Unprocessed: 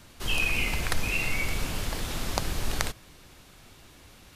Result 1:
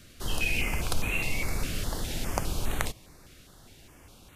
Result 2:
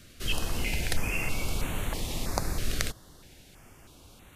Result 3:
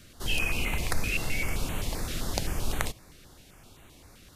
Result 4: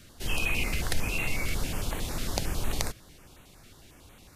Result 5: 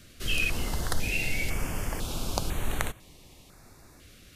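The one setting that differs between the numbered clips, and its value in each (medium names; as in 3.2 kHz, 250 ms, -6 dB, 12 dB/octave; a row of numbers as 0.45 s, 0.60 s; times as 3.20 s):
step-sequenced notch, rate: 4.9 Hz, 3.1 Hz, 7.7 Hz, 11 Hz, 2 Hz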